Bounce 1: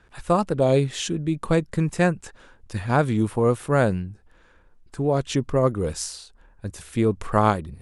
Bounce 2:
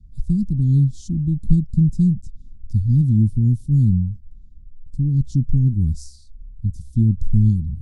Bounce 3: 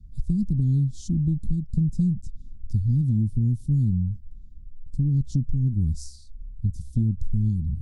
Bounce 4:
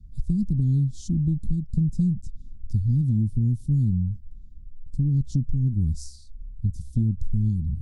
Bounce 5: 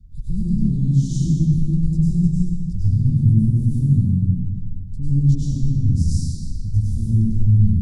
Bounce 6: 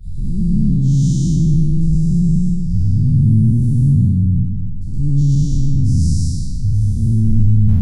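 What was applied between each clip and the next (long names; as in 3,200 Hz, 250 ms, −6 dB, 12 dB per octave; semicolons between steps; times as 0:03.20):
inverse Chebyshev band-stop filter 510–2,300 Hz, stop band 50 dB; RIAA equalisation playback; level −1.5 dB
downward compressor 6 to 1, threshold −19 dBFS, peak gain reduction 11.5 dB
no processing that can be heard
brickwall limiter −21.5 dBFS, peak gain reduction 9 dB; convolution reverb RT60 1.9 s, pre-delay 91 ms, DRR −9 dB
every bin's largest magnitude spread in time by 240 ms; level −1.5 dB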